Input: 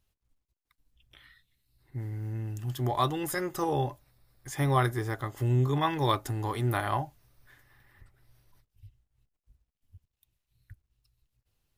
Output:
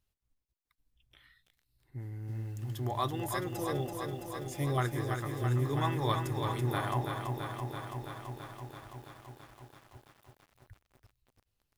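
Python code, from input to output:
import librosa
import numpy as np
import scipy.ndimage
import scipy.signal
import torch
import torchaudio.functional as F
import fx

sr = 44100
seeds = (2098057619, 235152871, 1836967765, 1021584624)

y = fx.band_shelf(x, sr, hz=1200.0, db=-15.5, octaves=1.2, at=(3.57, 4.78))
y = fx.echo_crushed(y, sr, ms=332, feedback_pct=80, bits=9, wet_db=-5.5)
y = y * librosa.db_to_amplitude(-5.5)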